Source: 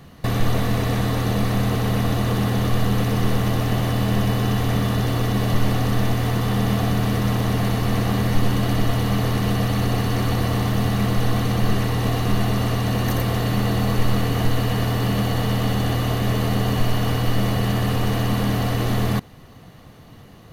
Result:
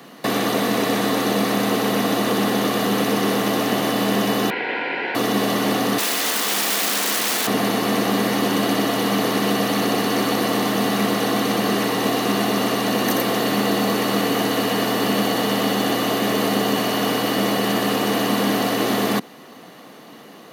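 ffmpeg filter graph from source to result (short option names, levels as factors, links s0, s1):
-filter_complex "[0:a]asettb=1/sr,asplit=3[s0][s1][s2];[s0]atrim=end=4.504[s3];[s1]atrim=start=4.5:end=5.15,asetpts=PTS-STARTPTS,afade=t=in:d=0.004:c=qsin,afade=t=out:st=0.646:d=0.004:c=qsin,highpass=f=280:w=0.5412,highpass=f=280:w=1.3066,equalizer=f=320:t=q:w=4:g=-6,equalizer=f=560:t=q:w=4:g=-4,equalizer=f=850:t=q:w=4:g=7,equalizer=f=1400:t=q:w=4:g=6,equalizer=f=2000:t=q:w=4:g=-4,lowpass=f=2300:w=0.5412,lowpass=f=2300:w=1.3066,aeval=exprs='val(0)*sin(2*PI*1200*n/s)':c=same[s4];[s2]atrim=start=5.146[s5];[s3][s4]acrossfade=d=0.004:c1=hsin:c2=qsin[s6];[s6][s5]acrossfade=d=0.004:c1=qsin:c2=hsin,asettb=1/sr,asplit=3[s7][s8][s9];[s7]atrim=end=5.984[s10];[s8]atrim=start=5.98:end=7.47,asetpts=PTS-STARTPTS,afade=t=in:d=0.004:c=qsin,afade=t=out:st=1.486:d=0.004:c=qsin,highpass=210,tiltshelf=f=1200:g=-6.5,aeval=exprs='(mod(11.9*val(0)+1,2)-1)/11.9':c=same[s11];[s9]atrim=start=7.466[s12];[s10][s11]acrossfade=d=0.004:c1=hsin:c2=qsin[s13];[s13][s12]acrossfade=d=0.004:c1=qsin:c2=hsin,highpass=f=230:w=0.5412,highpass=f=230:w=1.3066,acrossover=split=480|3000[s14][s15][s16];[s15]acompressor=threshold=0.0355:ratio=6[s17];[s14][s17][s16]amix=inputs=3:normalize=0,volume=2.24"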